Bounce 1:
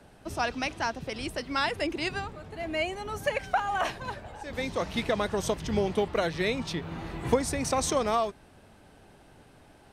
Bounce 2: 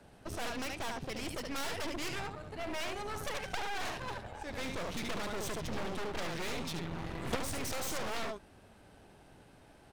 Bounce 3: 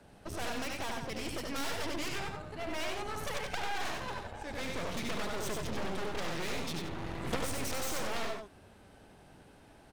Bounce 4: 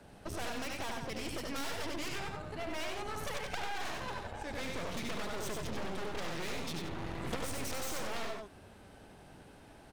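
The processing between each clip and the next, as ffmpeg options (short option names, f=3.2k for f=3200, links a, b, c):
-af "aecho=1:1:73:0.422,aeval=exprs='clip(val(0),-1,0.0251)':c=same,aeval=exprs='0.211*(cos(1*acos(clip(val(0)/0.211,-1,1)))-cos(1*PI/2))+0.0668*(cos(6*acos(clip(val(0)/0.211,-1,1)))-cos(6*PI/2))':c=same,volume=-4dB"
-af "aecho=1:1:94:0.562"
-af "acompressor=threshold=-39dB:ratio=2,volume=2dB"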